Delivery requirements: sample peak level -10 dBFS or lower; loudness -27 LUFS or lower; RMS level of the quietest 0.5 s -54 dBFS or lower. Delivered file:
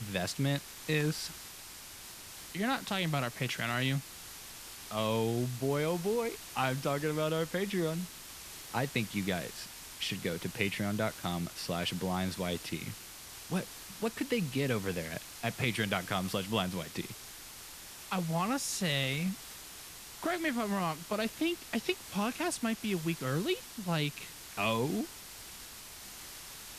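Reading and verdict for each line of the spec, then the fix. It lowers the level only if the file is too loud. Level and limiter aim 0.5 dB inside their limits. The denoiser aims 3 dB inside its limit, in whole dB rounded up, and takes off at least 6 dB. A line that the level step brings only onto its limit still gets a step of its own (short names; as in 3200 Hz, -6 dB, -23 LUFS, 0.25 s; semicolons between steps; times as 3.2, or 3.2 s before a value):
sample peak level -14.5 dBFS: OK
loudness -34.0 LUFS: OK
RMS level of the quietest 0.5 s -48 dBFS: fail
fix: denoiser 9 dB, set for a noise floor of -48 dBFS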